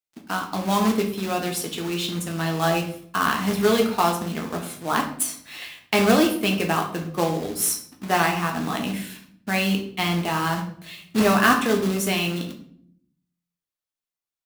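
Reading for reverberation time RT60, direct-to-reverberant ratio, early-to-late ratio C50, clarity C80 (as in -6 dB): 0.60 s, 1.5 dB, 8.5 dB, 12.0 dB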